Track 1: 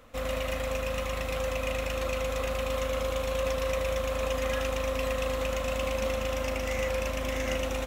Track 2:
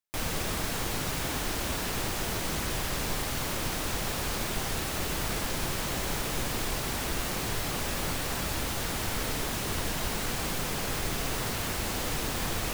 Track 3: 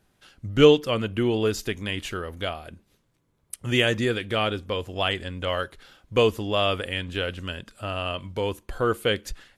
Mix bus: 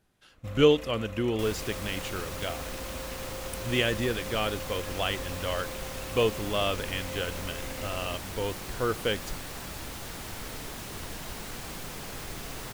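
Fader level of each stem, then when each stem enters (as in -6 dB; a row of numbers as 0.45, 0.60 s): -11.0, -7.5, -5.0 dB; 0.30, 1.25, 0.00 s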